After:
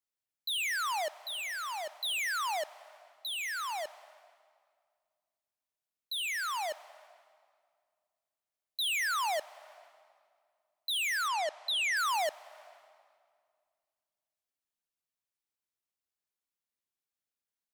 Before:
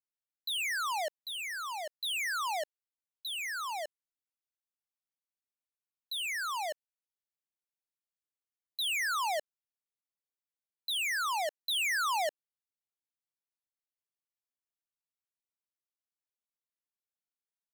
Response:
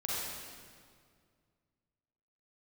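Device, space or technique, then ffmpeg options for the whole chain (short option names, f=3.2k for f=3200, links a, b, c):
compressed reverb return: -filter_complex "[0:a]asplit=2[a][b];[1:a]atrim=start_sample=2205[c];[b][c]afir=irnorm=-1:irlink=0,acompressor=threshold=-30dB:ratio=6,volume=-17.5dB[d];[a][d]amix=inputs=2:normalize=0,asettb=1/sr,asplit=3[e][f][g];[e]atrim=end=11.284[h];[f]atrim=start=11.28:end=11.97,asetpts=PTS-STARTPTS,afade=t=in:d=0.004:c=qsin,afade=t=out:st=0.686:d=0.004:c=qsin,lowpass=7.4k[i];[g]atrim=start=11.966[j];[h][i]acrossfade=d=0.004:c1=hsin:c2=qsin[k];[k][j]acrossfade=d=0.004:c1=qsin:c2=hsin"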